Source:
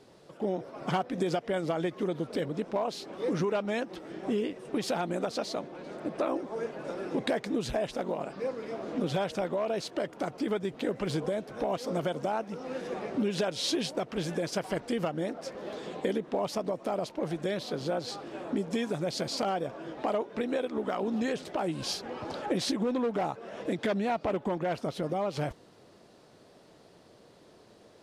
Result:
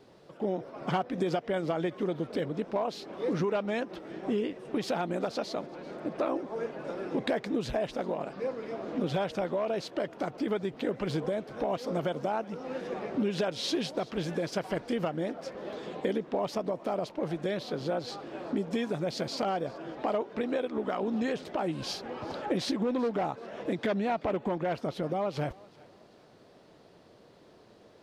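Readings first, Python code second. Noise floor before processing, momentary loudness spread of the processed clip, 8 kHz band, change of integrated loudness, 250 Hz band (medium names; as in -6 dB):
-57 dBFS, 7 LU, -5.0 dB, 0.0 dB, 0.0 dB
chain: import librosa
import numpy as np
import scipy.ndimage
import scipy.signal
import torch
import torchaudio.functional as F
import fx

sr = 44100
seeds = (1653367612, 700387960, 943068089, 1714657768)

y = fx.peak_eq(x, sr, hz=9200.0, db=-7.5, octaves=1.3)
y = fx.vibrato(y, sr, rate_hz=0.81, depth_cents=5.3)
y = fx.echo_thinned(y, sr, ms=383, feedback_pct=40, hz=420.0, wet_db=-22.0)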